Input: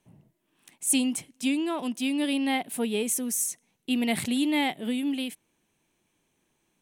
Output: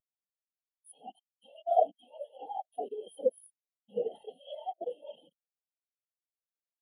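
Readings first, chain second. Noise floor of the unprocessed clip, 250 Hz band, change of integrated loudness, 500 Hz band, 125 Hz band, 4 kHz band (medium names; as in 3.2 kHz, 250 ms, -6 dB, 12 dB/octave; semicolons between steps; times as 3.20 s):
-75 dBFS, -29.0 dB, -7.0 dB, +1.5 dB, under -15 dB, -24.0 dB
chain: spectral levelling over time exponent 0.2; spectral noise reduction 12 dB; dynamic bell 580 Hz, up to +4 dB, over -38 dBFS, Q 1; level held to a coarse grid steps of 22 dB; peak limiter -16.5 dBFS, peak gain reduction 10 dB; static phaser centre 1.5 kHz, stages 8; whisper effect; spectral contrast expander 4:1; trim +5 dB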